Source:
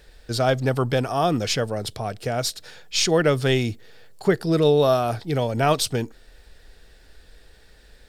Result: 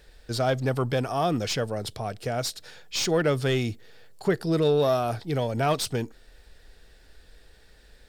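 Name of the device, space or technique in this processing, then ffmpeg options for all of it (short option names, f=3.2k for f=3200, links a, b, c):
saturation between pre-emphasis and de-emphasis: -af "highshelf=f=2.3k:g=11.5,asoftclip=type=tanh:threshold=-9.5dB,highshelf=f=2.3k:g=-11.5,volume=-3dB"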